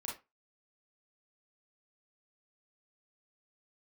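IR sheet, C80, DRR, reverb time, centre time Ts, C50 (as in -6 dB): 15.0 dB, -3.5 dB, no single decay rate, 33 ms, 5.5 dB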